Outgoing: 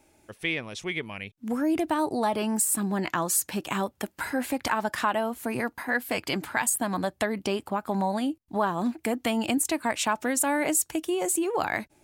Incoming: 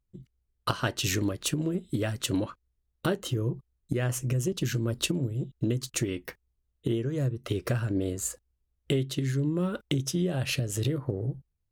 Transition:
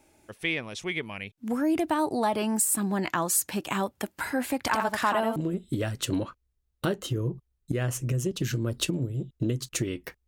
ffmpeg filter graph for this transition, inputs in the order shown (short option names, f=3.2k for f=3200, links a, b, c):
-filter_complex "[0:a]asplit=3[a][b][c];[a]afade=t=out:st=4.72:d=0.02[d];[b]aecho=1:1:85:0.531,afade=t=in:st=4.72:d=0.02,afade=t=out:st=5.36:d=0.02[e];[c]afade=t=in:st=5.36:d=0.02[f];[d][e][f]amix=inputs=3:normalize=0,apad=whole_dur=10.27,atrim=end=10.27,atrim=end=5.362[g];[1:a]atrim=start=1.568:end=6.48[h];[g][h]acrossfade=d=0.004:c1=hsin:c2=hsin"